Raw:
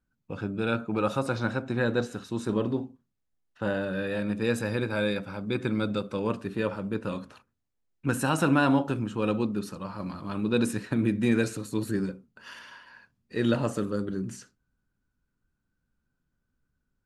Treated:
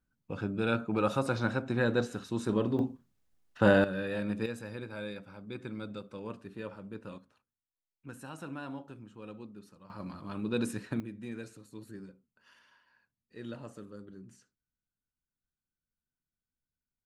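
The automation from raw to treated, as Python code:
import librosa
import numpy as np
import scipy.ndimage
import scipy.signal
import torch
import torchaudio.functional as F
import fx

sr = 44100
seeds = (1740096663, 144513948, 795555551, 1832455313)

y = fx.gain(x, sr, db=fx.steps((0.0, -2.0), (2.79, 6.5), (3.84, -4.0), (4.46, -12.5), (7.18, -19.0), (9.9, -6.5), (11.0, -17.5)))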